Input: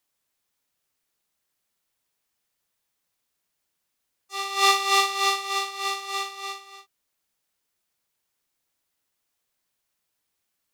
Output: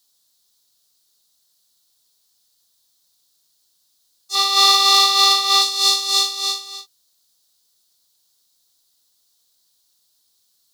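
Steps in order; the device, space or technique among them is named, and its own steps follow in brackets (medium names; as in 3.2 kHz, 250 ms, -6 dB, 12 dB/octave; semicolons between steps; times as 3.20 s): over-bright horn tweeter (resonant high shelf 3.1 kHz +9.5 dB, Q 3; peak limiter -7.5 dBFS, peak gain reduction 9.5 dB); 4.35–5.62 s: graphic EQ 1/2/8 kHz +7/+5/-5 dB; trim +4 dB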